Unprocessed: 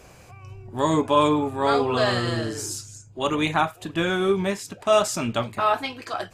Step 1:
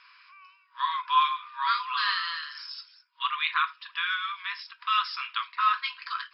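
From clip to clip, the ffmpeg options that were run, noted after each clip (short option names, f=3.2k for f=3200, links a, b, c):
-af "afftfilt=real='re*between(b*sr/4096,950,5400)':imag='im*between(b*sr/4096,950,5400)':win_size=4096:overlap=0.75"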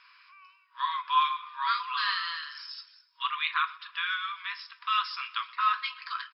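-af "aecho=1:1:125|250|375|500:0.0841|0.0463|0.0255|0.014,volume=-2dB"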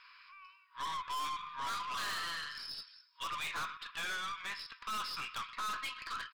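-af "aeval=exprs='(tanh(63.1*val(0)+0.3)-tanh(0.3))/63.1':c=same"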